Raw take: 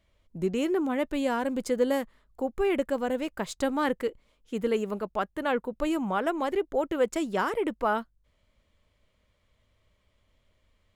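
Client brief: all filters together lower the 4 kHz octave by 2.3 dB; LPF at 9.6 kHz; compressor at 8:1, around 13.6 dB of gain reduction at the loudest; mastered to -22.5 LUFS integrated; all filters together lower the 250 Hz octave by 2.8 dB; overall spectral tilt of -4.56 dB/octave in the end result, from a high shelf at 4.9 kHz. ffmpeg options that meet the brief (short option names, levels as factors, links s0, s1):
-af "lowpass=9600,equalizer=f=250:t=o:g=-3.5,equalizer=f=4000:t=o:g=-7.5,highshelf=f=4900:g=9,acompressor=threshold=0.0178:ratio=8,volume=7.5"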